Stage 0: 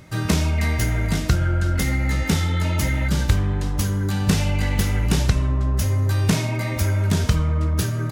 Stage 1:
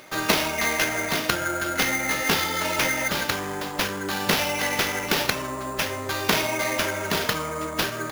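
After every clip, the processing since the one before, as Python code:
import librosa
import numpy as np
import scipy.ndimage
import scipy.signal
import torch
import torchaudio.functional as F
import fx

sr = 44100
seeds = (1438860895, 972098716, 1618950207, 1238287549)

y = scipy.signal.sosfilt(scipy.signal.butter(2, 450.0, 'highpass', fs=sr, output='sos'), x)
y = fx.sample_hold(y, sr, seeds[0], rate_hz=8300.0, jitter_pct=0)
y = y * 10.0 ** (5.5 / 20.0)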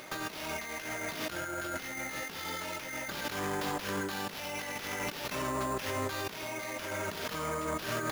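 y = fx.over_compress(x, sr, threshold_db=-32.0, ratio=-1.0)
y = y * 10.0 ** (-5.5 / 20.0)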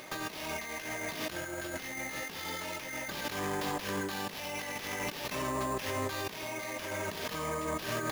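y = fx.notch(x, sr, hz=1400.0, q=8.9)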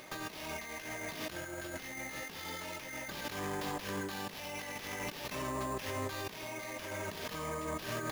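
y = fx.low_shelf(x, sr, hz=130.0, db=3.5)
y = y * 10.0 ** (-4.0 / 20.0)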